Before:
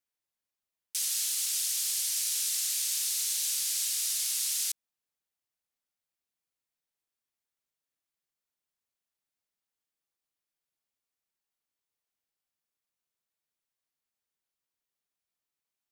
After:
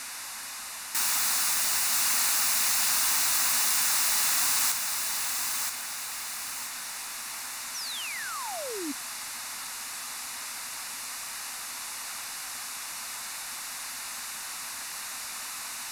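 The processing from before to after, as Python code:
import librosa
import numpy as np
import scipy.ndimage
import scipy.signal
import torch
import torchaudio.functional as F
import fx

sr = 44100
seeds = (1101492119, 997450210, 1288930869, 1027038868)

p1 = x + 0.5 * 10.0 ** (-42.5 / 20.0) * np.sign(x)
p2 = scipy.signal.sosfilt(scipy.signal.butter(4, 12000.0, 'lowpass', fs=sr, output='sos'), p1)
p3 = fx.fold_sine(p2, sr, drive_db=15, ceiling_db=-18.0)
p4 = fx.low_shelf_res(p3, sr, hz=650.0, db=-12.0, q=1.5)
p5 = fx.notch(p4, sr, hz=3200.0, q=5.2)
p6 = p5 + fx.echo_feedback(p5, sr, ms=976, feedback_pct=34, wet_db=-5.0, dry=0)
p7 = fx.spec_paint(p6, sr, seeds[0], shape='fall', start_s=7.74, length_s=1.18, low_hz=270.0, high_hz=6200.0, level_db=-33.0)
p8 = fx.peak_eq(p7, sr, hz=250.0, db=9.5, octaves=0.42)
y = F.gain(torch.from_numpy(p8), -4.5).numpy()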